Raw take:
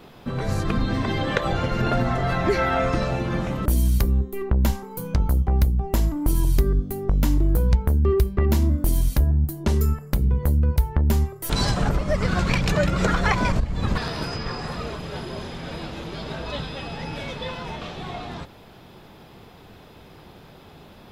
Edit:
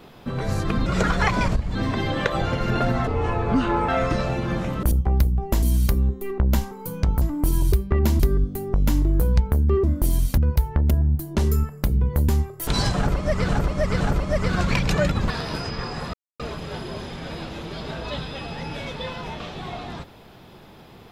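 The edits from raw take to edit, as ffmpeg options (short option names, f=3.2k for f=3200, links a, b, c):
-filter_complex "[0:a]asplit=18[a][b][c][d][e][f][g][h][i][j][k][l][m][n][o][p][q][r];[a]atrim=end=0.862[s];[b]atrim=start=12.898:end=13.792[t];[c]atrim=start=0.858:end=2.184[u];[d]atrim=start=2.18:end=2.71,asetpts=PTS-STARTPTS,asetrate=28665,aresample=44100,atrim=end_sample=35958,asetpts=PTS-STARTPTS[v];[e]atrim=start=2.706:end=3.742[w];[f]atrim=start=5.328:end=6.042[x];[g]atrim=start=3.738:end=5.332[y];[h]atrim=start=6.038:end=6.552[z];[i]atrim=start=8.188:end=8.662[aa];[j]atrim=start=6.548:end=8.192[ab];[k]atrim=start=8.658:end=9.202[ac];[l]atrim=start=10.578:end=11.112[ad];[m]atrim=start=9.198:end=10.582[ae];[n]atrim=start=11.108:end=12.312[af];[o]atrim=start=11.788:end=12.312[ag];[p]atrim=start=11.788:end=12.902[ah];[q]atrim=start=13.788:end=14.81,asetpts=PTS-STARTPTS,afade=t=out:st=1.018:d=0.004:c=hsin,apad=pad_dur=0.26[ai];[r]atrim=start=14.81,asetpts=PTS-STARTPTS,afade=t=in:d=0.004:c=hsin[aj];[s][t]acrossfade=d=0.004:c1=hsin:c2=hsin[ak];[ak][u]acrossfade=d=0.004:c1=hsin:c2=hsin[al];[al][v]acrossfade=d=0.004:c1=hsin:c2=hsin[am];[am][w]acrossfade=d=0.004:c1=hsin:c2=hsin[an];[an][x]acrossfade=d=0.004:c1=hsin:c2=hsin[ao];[ao][y]acrossfade=d=0.004:c1=hsin:c2=hsin[ap];[ap][z]acrossfade=d=0.004:c1=hsin:c2=hsin[aq];[aq][aa]acrossfade=d=0.004:c1=hsin:c2=hsin[ar];[ar][ab]acrossfade=d=0.004:c1=hsin:c2=hsin[as];[as][ac]acrossfade=d=0.004:c1=hsin:c2=hsin[at];[at][ad]acrossfade=d=0.004:c1=hsin:c2=hsin[au];[au][ae]acrossfade=d=0.004:c1=hsin:c2=hsin[av];[av][af]acrossfade=d=0.004:c1=hsin:c2=hsin[aw];[aw][ag]acrossfade=d=0.004:c1=hsin:c2=hsin[ax];[ax][ah]acrossfade=d=0.004:c1=hsin:c2=hsin[ay];[ai][aj]concat=n=2:v=0:a=1[az];[ay][az]acrossfade=d=0.004:c1=hsin:c2=hsin"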